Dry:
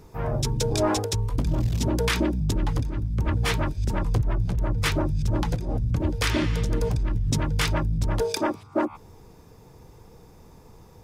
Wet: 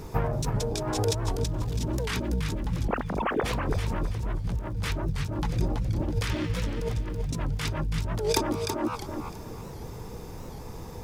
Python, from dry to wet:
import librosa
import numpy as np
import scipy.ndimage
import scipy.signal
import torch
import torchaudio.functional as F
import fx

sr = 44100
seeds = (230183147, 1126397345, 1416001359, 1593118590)

y = fx.sine_speech(x, sr, at=(2.88, 3.44))
y = fx.over_compress(y, sr, threshold_db=-31.0, ratio=-1.0)
y = fx.dmg_crackle(y, sr, seeds[0], per_s=280.0, level_db=-51.0)
y = fx.echo_feedback(y, sr, ms=328, feedback_pct=31, wet_db=-6.0)
y = fx.record_warp(y, sr, rpm=78.0, depth_cents=160.0)
y = F.gain(torch.from_numpy(y), 2.0).numpy()